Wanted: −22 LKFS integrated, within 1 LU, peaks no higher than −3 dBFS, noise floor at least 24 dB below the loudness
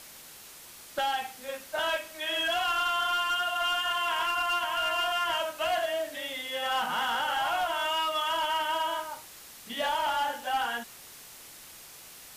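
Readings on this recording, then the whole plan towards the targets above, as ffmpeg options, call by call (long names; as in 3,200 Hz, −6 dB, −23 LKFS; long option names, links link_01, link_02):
background noise floor −49 dBFS; target noise floor −53 dBFS; integrated loudness −29.0 LKFS; sample peak −21.5 dBFS; target loudness −22.0 LKFS
→ -af "afftdn=noise_reduction=6:noise_floor=-49"
-af "volume=7dB"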